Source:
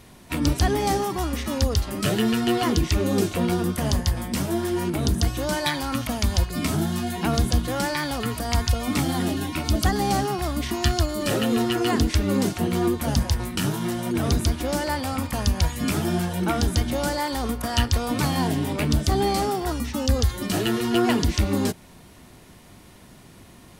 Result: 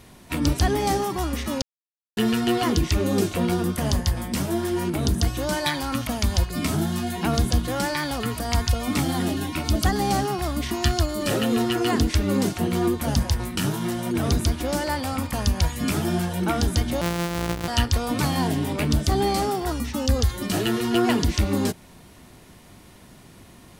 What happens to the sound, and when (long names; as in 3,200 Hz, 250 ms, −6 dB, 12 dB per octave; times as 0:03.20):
0:01.62–0:02.17: silence
0:17.01–0:17.68: samples sorted by size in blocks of 256 samples